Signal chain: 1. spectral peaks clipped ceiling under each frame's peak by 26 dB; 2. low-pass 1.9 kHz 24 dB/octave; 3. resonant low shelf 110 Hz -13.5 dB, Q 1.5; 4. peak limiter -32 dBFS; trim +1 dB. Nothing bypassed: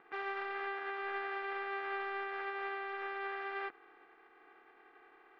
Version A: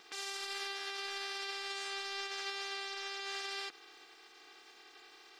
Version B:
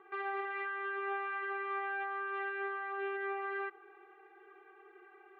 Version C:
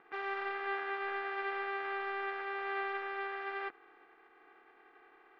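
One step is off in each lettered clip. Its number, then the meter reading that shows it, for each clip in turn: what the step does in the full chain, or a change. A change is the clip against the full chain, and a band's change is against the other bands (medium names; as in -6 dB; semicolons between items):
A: 2, 4 kHz band +21.5 dB; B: 1, 4 kHz band -7.0 dB; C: 4, crest factor change +4.5 dB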